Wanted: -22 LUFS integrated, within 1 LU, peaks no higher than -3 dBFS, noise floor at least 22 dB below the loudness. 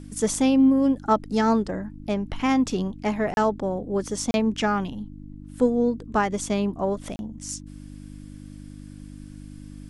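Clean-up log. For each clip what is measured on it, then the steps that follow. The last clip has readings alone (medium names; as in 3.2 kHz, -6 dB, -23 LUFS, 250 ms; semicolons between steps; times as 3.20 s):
dropouts 3; longest dropout 31 ms; hum 50 Hz; highest harmonic 300 Hz; hum level -40 dBFS; loudness -24.0 LUFS; peak level -8.5 dBFS; loudness target -22.0 LUFS
-> interpolate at 3.34/4.31/7.16 s, 31 ms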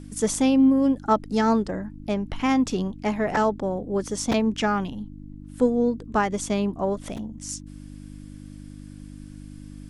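dropouts 0; hum 50 Hz; highest harmonic 300 Hz; hum level -40 dBFS
-> de-hum 50 Hz, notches 6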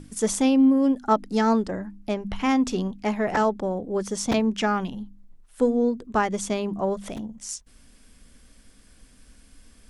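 hum not found; loudness -24.5 LUFS; peak level -9.0 dBFS; loudness target -22.0 LUFS
-> trim +2.5 dB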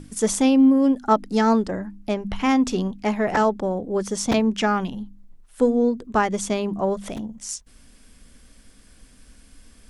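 loudness -22.0 LUFS; peak level -6.5 dBFS; noise floor -52 dBFS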